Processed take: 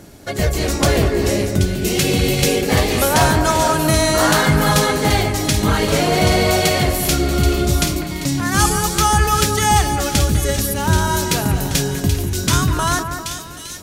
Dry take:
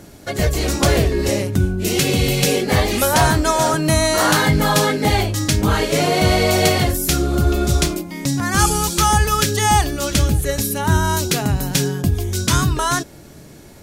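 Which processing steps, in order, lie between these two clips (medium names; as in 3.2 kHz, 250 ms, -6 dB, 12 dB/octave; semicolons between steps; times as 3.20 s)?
two-band feedback delay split 2.2 kHz, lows 199 ms, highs 780 ms, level -7.5 dB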